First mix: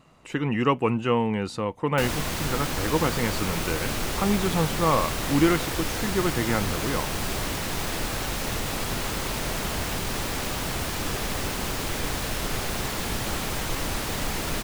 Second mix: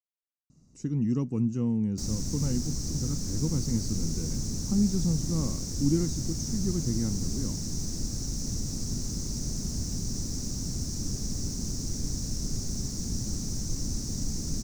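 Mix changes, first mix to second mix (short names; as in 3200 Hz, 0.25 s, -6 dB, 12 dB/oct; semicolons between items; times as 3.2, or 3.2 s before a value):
speech: entry +0.50 s; master: add EQ curve 240 Hz 0 dB, 520 Hz -18 dB, 920 Hz -25 dB, 3200 Hz -28 dB, 5800 Hz +5 dB, 11000 Hz -16 dB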